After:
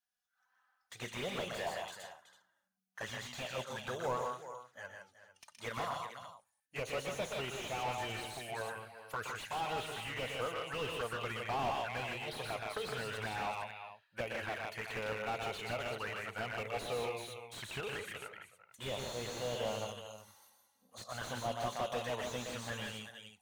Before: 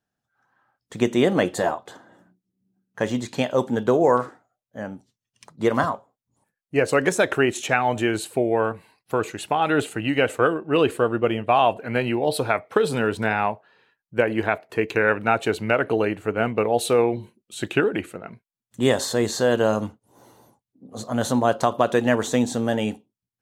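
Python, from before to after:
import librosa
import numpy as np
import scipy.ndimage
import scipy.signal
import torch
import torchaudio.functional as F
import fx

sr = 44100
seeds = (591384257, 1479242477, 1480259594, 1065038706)

y = fx.tone_stack(x, sr, knobs='10-0-10')
y = fx.env_flanger(y, sr, rest_ms=4.1, full_db=-29.5)
y = fx.low_shelf(y, sr, hz=120.0, db=-12.0)
y = fx.notch(y, sr, hz=7600.0, q=11.0)
y = fx.echo_multitap(y, sr, ms=(121, 158, 376, 451), db=(-7.5, -6.5, -14.0, -16.5))
y = fx.slew_limit(y, sr, full_power_hz=20.0)
y = y * 10.0 ** (1.0 / 20.0)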